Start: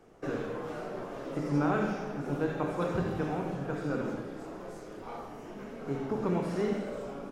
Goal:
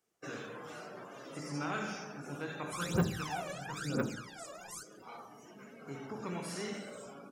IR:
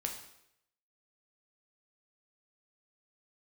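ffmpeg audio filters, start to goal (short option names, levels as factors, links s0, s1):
-filter_complex "[0:a]asoftclip=type=tanh:threshold=0.106,bass=f=250:g=15,treble=f=4000:g=0,asplit=3[s0][s1][s2];[s0]afade=t=out:st=2.71:d=0.02[s3];[s1]aphaser=in_gain=1:out_gain=1:delay=1.8:decay=0.79:speed=1:type=triangular,afade=t=in:st=2.71:d=0.02,afade=t=out:st=4.82:d=0.02[s4];[s2]afade=t=in:st=4.82:d=0.02[s5];[s3][s4][s5]amix=inputs=3:normalize=0,aderivative,afftdn=nr=19:nf=-63,volume=3.76"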